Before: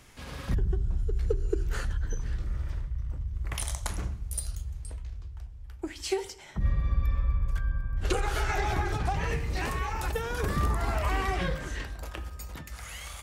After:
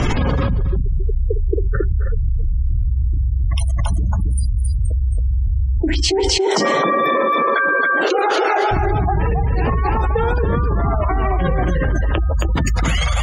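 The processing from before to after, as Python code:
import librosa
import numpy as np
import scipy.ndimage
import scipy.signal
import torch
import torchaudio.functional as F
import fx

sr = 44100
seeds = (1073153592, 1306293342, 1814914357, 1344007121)

y = fx.highpass(x, sr, hz=340.0, slope=24, at=(6.2, 8.71))
y = fx.spec_gate(y, sr, threshold_db=-20, keep='strong')
y = scipy.signal.sosfilt(scipy.signal.butter(2, 4800.0, 'lowpass', fs=sr, output='sos'), y)
y = fx.peak_eq(y, sr, hz=2000.0, db=-8.0, octaves=1.5)
y = fx.rider(y, sr, range_db=4, speed_s=0.5)
y = y + 10.0 ** (-4.0 / 20.0) * np.pad(y, (int(272 * sr / 1000.0), 0))[:len(y)]
y = fx.env_flatten(y, sr, amount_pct=100)
y = F.gain(torch.from_numpy(y), 7.0).numpy()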